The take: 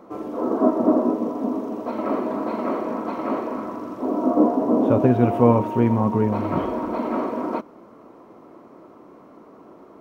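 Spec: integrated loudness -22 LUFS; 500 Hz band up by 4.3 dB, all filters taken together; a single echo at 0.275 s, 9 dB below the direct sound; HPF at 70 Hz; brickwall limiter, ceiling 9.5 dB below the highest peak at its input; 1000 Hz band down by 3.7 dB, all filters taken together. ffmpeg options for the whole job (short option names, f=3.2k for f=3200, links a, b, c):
-af "highpass=70,equalizer=f=500:t=o:g=7.5,equalizer=f=1k:t=o:g=-8.5,alimiter=limit=-10.5dB:level=0:latency=1,aecho=1:1:275:0.355,volume=-0.5dB"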